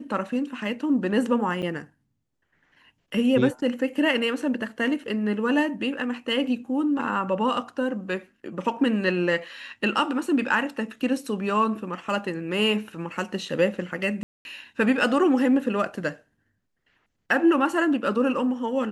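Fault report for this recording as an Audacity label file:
1.620000	1.630000	gap 6.9 ms
14.230000	14.450000	gap 0.221 s

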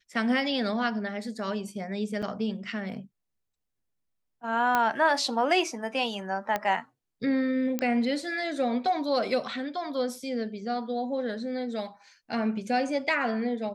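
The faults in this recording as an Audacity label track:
2.220000	2.230000	gap 6.8 ms
4.750000	4.750000	pop -11 dBFS
6.560000	6.560000	pop -14 dBFS
7.790000	7.790000	pop -13 dBFS

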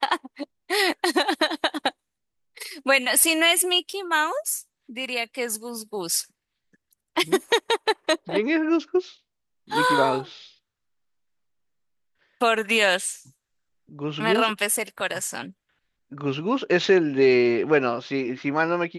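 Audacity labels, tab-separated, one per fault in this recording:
3.930000	3.940000	gap 5.3 ms

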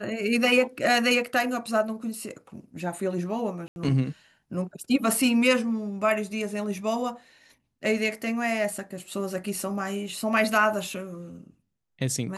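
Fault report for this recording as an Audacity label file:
3.680000	3.760000	gap 81 ms

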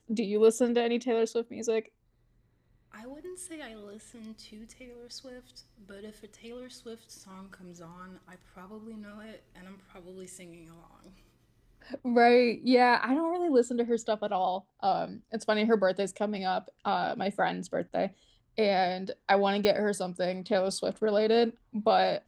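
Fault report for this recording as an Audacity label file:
19.650000	19.650000	pop -12 dBFS

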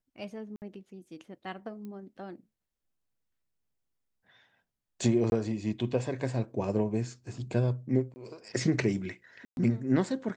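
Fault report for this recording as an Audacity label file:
0.560000	0.620000	gap 59 ms
1.850000	1.850000	pop -32 dBFS
5.300000	5.320000	gap 21 ms
8.140000	8.160000	gap 20 ms
9.450000	9.570000	gap 0.121 s

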